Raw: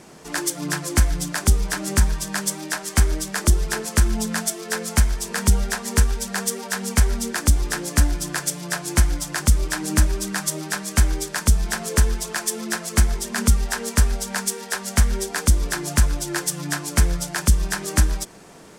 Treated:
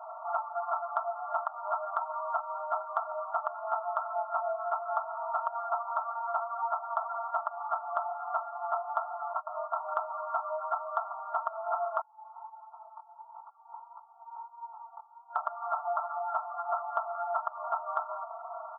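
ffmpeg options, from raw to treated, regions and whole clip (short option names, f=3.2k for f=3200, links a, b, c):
-filter_complex "[0:a]asettb=1/sr,asplit=3[a][b][c];[a]atrim=end=9.334[d];[b]atrim=start=9.33:end=9.76,asetpts=PTS-STARTPTS,afade=t=in:d=0.004:c=qsin,afade=t=out:st=0.426:d=0.004:c=qsin,agate=range=-33dB:threshold=-20dB:ratio=3:release=100:detection=peak,afreqshift=34[e];[c]atrim=start=9.756[f];[d][e]acrossfade=d=0.004:c1=hsin:c2=qsin[g];[g][f]acrossfade=d=0.004:c1=qsin:c2=hsin,asettb=1/sr,asplit=3[h][i][j];[h]atrim=end=12.014[k];[i]atrim=start=12.01:end=15.36,asetpts=PTS-STARTPTS,afade=t=in:d=0.004:c=qsin,afade=t=out:st=3.346:d=0.004:c=qsin,acompressor=threshold=-28dB:ratio=4:attack=3.2:release=140:knee=1:detection=peak,asplit=3[l][m][n];[l]bandpass=f=300:t=q:w=8,volume=0dB[o];[m]bandpass=f=870:t=q:w=8,volume=-6dB[p];[n]bandpass=f=2.24k:t=q:w=8,volume=-9dB[q];[o][p][q]amix=inputs=3:normalize=0,flanger=delay=16:depth=6.3:speed=1.5[r];[j]atrim=start=15.356[s];[k][r]acrossfade=d=0.004:c1=hsin:c2=qsin[t];[t][s]acrossfade=d=0.004:c1=qsin:c2=hsin,afftfilt=real='re*between(b*sr/4096,610,1400)':imag='im*between(b*sr/4096,610,1400)':win_size=4096:overlap=0.75,aecho=1:1:4.4:0.84,acompressor=threshold=-39dB:ratio=2.5,volume=7.5dB"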